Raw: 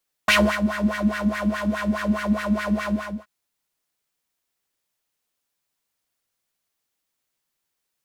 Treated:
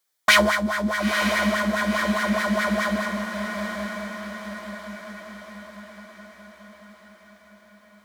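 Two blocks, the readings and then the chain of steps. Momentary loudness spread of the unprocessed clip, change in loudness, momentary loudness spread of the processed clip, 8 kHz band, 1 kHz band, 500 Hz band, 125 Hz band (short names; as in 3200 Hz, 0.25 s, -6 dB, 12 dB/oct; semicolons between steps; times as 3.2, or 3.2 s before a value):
8 LU, 0.0 dB, 22 LU, +5.5 dB, +4.0 dB, +2.5 dB, n/a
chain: low shelf 420 Hz -10.5 dB; notch 2700 Hz, Q 6.1; diffused feedback echo 0.939 s, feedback 53%, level -6.5 dB; gain +4.5 dB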